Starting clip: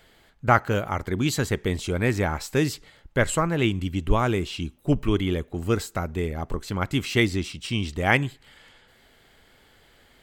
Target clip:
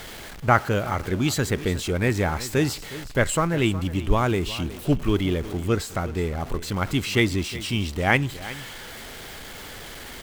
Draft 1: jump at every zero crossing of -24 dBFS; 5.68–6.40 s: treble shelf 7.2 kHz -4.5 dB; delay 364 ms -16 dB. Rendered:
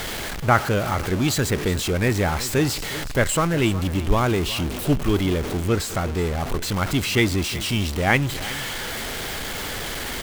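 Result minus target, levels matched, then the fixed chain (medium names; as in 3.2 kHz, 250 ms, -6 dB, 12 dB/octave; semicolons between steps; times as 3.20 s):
jump at every zero crossing: distortion +8 dB
jump at every zero crossing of -34 dBFS; 5.68–6.40 s: treble shelf 7.2 kHz -4.5 dB; delay 364 ms -16 dB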